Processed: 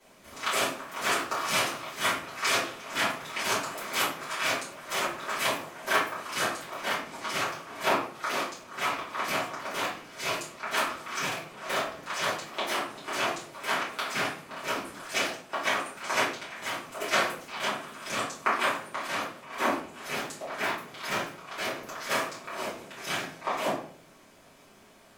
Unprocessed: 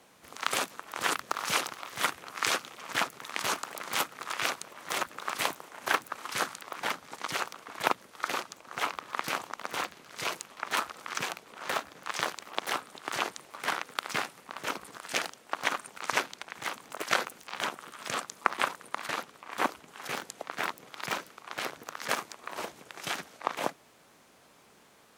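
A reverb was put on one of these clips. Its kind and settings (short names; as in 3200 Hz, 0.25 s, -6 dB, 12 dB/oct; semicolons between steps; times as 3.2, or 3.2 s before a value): shoebox room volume 62 m³, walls mixed, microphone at 2.9 m; gain -9 dB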